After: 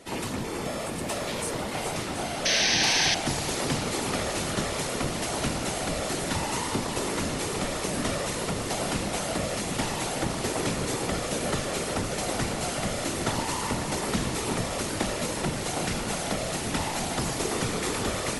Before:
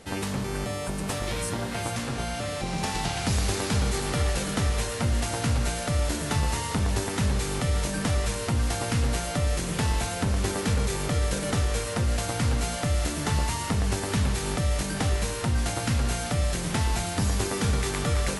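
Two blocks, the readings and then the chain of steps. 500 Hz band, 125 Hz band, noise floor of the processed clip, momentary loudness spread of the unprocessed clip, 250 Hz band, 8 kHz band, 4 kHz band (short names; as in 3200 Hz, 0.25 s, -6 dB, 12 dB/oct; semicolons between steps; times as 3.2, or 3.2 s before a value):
+1.5 dB, -8.0 dB, -32 dBFS, 4 LU, -0.5 dB, +2.0 dB, +3.5 dB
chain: HPF 170 Hz 12 dB/oct; notch 1600 Hz, Q 13; whisperiser; echo with dull and thin repeats by turns 0.365 s, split 1900 Hz, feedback 86%, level -8 dB; painted sound noise, 2.45–3.15, 1500–6400 Hz -24 dBFS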